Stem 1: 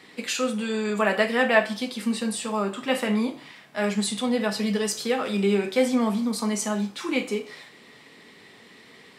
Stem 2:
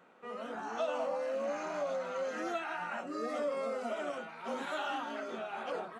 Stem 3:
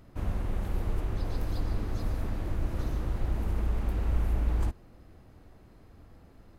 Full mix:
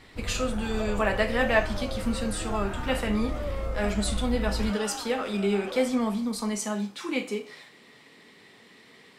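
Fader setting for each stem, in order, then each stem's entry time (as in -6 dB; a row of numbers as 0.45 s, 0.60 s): -3.5 dB, -1.5 dB, -3.5 dB; 0.00 s, 0.00 s, 0.00 s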